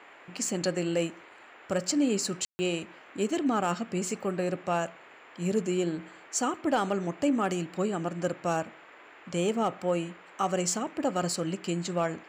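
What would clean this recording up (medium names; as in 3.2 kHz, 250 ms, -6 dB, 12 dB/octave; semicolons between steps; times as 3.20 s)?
clip repair -18 dBFS; room tone fill 2.45–2.59 s; noise print and reduce 23 dB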